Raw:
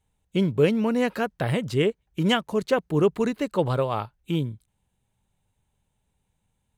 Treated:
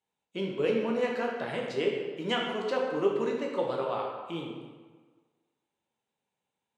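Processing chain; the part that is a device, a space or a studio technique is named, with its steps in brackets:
supermarket ceiling speaker (band-pass filter 310–6,300 Hz; convolution reverb RT60 1.5 s, pre-delay 10 ms, DRR −1.5 dB)
level −8 dB

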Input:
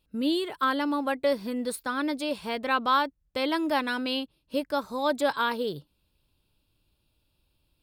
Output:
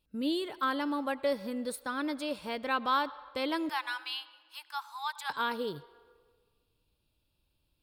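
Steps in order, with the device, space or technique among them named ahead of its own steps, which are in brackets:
0:03.69–0:05.30: Butterworth high-pass 820 Hz 72 dB per octave
filtered reverb send (on a send: high-pass filter 400 Hz 24 dB per octave + low-pass filter 6,700 Hz + convolution reverb RT60 1.6 s, pre-delay 67 ms, DRR 17.5 dB)
on the sum: level −5 dB

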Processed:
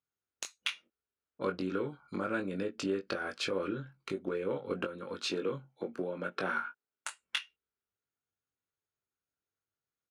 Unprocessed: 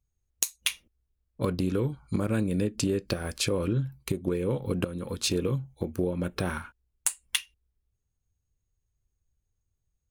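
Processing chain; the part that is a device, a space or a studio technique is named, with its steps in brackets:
0:05.19–0:07.11: high-pass filter 110 Hz 24 dB per octave
intercom (band-pass filter 300–4,100 Hz; parametric band 1,400 Hz +9.5 dB 0.34 octaves; soft clipping −13.5 dBFS, distortion −27 dB; double-tracking delay 21 ms −6 dB)
level −4 dB

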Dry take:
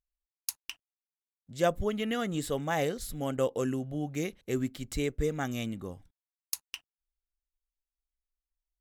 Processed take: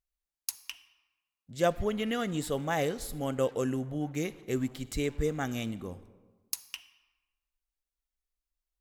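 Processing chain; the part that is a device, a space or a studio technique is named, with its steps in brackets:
saturated reverb return (on a send at −12 dB: convolution reverb RT60 1.2 s, pre-delay 39 ms + soft clipping −35 dBFS, distortion −6 dB)

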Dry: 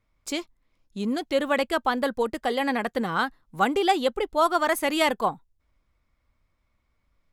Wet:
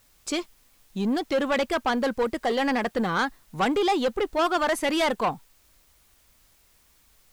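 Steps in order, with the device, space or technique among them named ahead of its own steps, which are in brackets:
compact cassette (soft clipping −22.5 dBFS, distortion −10 dB; low-pass filter 8,700 Hz 12 dB per octave; tape wow and flutter; white noise bed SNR 35 dB)
level +4 dB

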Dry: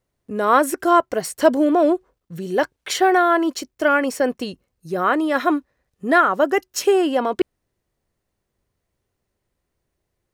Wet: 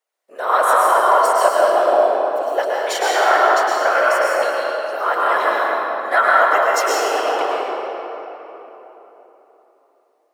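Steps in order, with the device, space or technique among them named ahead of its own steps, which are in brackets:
whispering ghost (random phases in short frames; high-pass filter 540 Hz 24 dB per octave; convolution reverb RT60 3.7 s, pre-delay 102 ms, DRR −5.5 dB)
level −1.5 dB

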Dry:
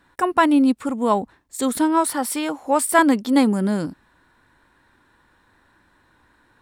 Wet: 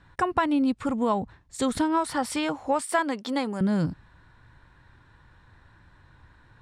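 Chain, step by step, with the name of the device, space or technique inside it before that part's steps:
jukebox (low-pass filter 6,200 Hz 12 dB per octave; low shelf with overshoot 180 Hz +10 dB, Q 1.5; downward compressor 4 to 1, threshold −21 dBFS, peak gain reduction 10 dB)
0:02.81–0:03.61: high-pass filter 350 Hz 12 dB per octave

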